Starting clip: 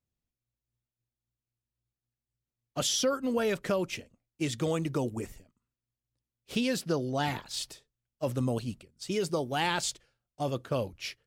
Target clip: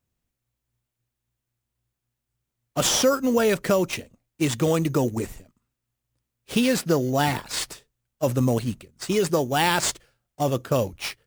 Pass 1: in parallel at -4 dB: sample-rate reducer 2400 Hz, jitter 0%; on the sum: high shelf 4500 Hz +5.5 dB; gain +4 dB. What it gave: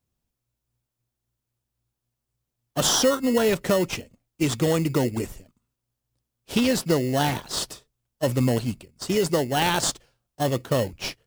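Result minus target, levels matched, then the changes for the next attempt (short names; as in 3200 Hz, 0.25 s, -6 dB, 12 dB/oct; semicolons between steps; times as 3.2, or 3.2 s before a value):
sample-rate reducer: distortion +4 dB
change: sample-rate reducer 6400 Hz, jitter 0%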